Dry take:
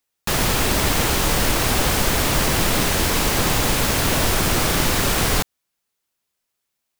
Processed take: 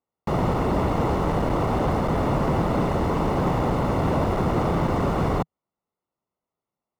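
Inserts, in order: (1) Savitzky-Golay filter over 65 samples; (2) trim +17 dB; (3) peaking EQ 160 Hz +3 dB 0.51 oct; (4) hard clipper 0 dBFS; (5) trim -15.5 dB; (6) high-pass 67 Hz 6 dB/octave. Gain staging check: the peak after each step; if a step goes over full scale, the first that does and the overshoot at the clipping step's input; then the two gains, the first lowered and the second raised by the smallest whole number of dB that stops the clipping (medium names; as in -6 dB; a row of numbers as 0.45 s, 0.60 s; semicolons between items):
-8.0 dBFS, +9.0 dBFS, +9.5 dBFS, 0.0 dBFS, -15.5 dBFS, -11.5 dBFS; step 2, 9.5 dB; step 2 +7 dB, step 5 -5.5 dB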